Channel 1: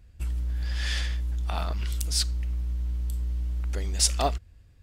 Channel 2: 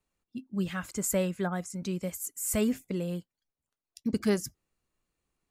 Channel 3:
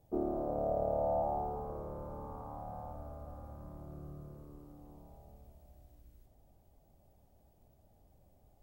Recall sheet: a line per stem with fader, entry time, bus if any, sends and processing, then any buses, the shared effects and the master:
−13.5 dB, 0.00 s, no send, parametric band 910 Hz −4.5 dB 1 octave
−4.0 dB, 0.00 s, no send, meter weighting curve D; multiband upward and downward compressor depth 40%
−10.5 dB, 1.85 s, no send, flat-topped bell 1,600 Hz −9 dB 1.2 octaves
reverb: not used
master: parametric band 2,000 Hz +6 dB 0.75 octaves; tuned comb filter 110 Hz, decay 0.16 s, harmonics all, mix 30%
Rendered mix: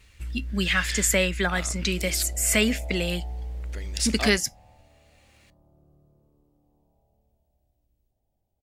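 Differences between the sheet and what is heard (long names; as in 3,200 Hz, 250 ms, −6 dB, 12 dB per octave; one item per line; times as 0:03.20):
stem 1 −13.5 dB → −2.0 dB
stem 2 −4.0 dB → +7.0 dB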